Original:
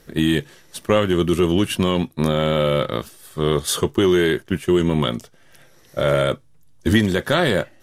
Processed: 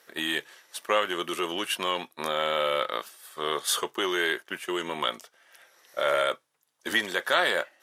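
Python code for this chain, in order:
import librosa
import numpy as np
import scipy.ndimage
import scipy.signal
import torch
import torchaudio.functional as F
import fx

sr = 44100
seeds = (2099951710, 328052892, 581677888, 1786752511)

y = scipy.signal.sosfilt(scipy.signal.butter(2, 810.0, 'highpass', fs=sr, output='sos'), x)
y = fx.peak_eq(y, sr, hz=7800.0, db=-4.5, octaves=2.8)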